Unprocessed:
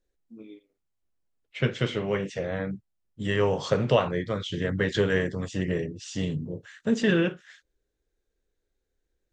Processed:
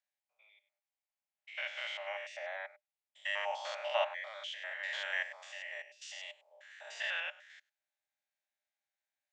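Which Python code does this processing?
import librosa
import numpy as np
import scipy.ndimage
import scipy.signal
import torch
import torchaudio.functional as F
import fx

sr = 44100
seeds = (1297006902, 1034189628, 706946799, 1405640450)

y = fx.spec_steps(x, sr, hold_ms=100)
y = scipy.signal.sosfilt(scipy.signal.cheby1(6, 9, 580.0, 'highpass', fs=sr, output='sos'), y)
y = y * 10.0 ** (1.0 / 20.0)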